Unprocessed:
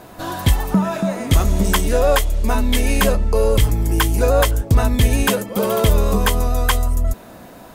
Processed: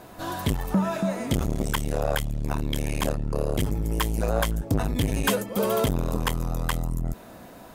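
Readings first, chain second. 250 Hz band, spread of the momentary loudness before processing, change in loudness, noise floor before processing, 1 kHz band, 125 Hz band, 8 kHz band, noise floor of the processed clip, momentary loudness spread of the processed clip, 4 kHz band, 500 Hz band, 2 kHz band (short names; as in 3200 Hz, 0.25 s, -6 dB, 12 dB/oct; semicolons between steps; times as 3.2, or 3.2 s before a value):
-6.5 dB, 5 LU, -9.0 dB, -41 dBFS, -8.0 dB, -8.5 dB, -9.5 dB, -46 dBFS, 5 LU, -9.0 dB, -9.0 dB, -9.0 dB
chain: core saturation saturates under 270 Hz; gain -5 dB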